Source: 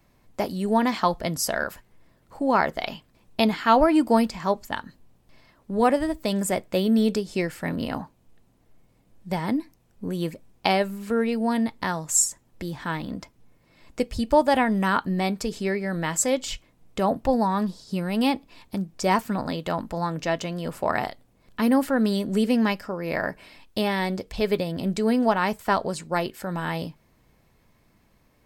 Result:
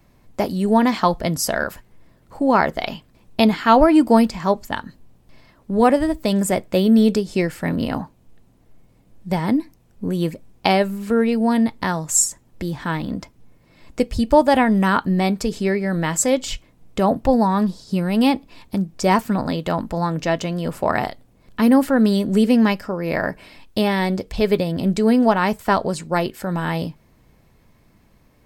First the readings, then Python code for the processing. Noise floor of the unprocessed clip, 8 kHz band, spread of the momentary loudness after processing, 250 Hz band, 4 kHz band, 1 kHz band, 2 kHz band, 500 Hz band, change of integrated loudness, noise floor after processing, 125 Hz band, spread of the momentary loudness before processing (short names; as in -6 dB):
-63 dBFS, +3.5 dB, 12 LU, +6.5 dB, +3.5 dB, +4.5 dB, +3.5 dB, +5.0 dB, +5.5 dB, -56 dBFS, +7.0 dB, 12 LU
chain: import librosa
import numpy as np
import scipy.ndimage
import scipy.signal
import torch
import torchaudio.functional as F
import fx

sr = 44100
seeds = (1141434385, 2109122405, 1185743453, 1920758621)

y = fx.low_shelf(x, sr, hz=430.0, db=4.0)
y = y * librosa.db_to_amplitude(3.5)